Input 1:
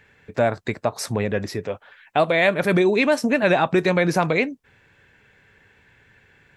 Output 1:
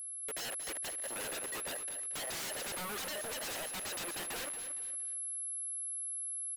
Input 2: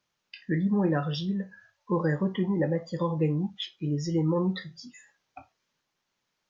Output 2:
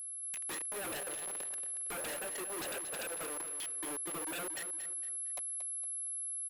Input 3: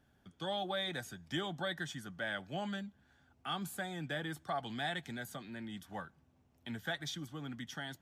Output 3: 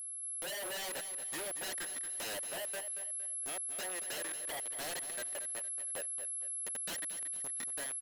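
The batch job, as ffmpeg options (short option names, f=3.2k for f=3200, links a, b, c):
-filter_complex "[0:a]acompressor=threshold=-31dB:ratio=16,highshelf=f=5.6k:g=-11.5,flanger=delay=6.8:depth=2.4:regen=-90:speed=0.28:shape=triangular,asplit=3[a][b][c];[a]bandpass=f=530:t=q:w=8,volume=0dB[d];[b]bandpass=f=1.84k:t=q:w=8,volume=-6dB[e];[c]bandpass=f=2.48k:t=q:w=8,volume=-9dB[f];[d][e][f]amix=inputs=3:normalize=0,aecho=1:1:3.1:0.63,aeval=exprs='val(0)*gte(abs(val(0)),0.00158)':c=same,bass=f=250:g=-15,treble=f=4k:g=-7,acompressor=mode=upward:threshold=-57dB:ratio=2.5,aeval=exprs='val(0)+0.000708*sin(2*PI*11000*n/s)':c=same,highpass=f=130:w=0.5412,highpass=f=130:w=1.3066,aeval=exprs='0.0141*sin(PI/2*8.91*val(0)/0.0141)':c=same,asplit=2[g][h];[h]aecho=0:1:230|460|690|920:0.316|0.12|0.0457|0.0174[i];[g][i]amix=inputs=2:normalize=0"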